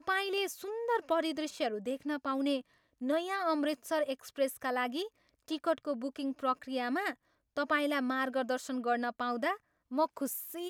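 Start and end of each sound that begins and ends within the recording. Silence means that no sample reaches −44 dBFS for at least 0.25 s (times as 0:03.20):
0:03.01–0:05.08
0:05.48–0:07.13
0:07.57–0:09.56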